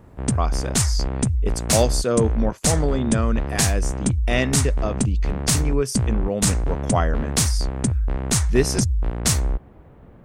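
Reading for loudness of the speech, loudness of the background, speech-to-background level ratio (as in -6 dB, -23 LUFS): -26.0 LUFS, -23.0 LUFS, -3.0 dB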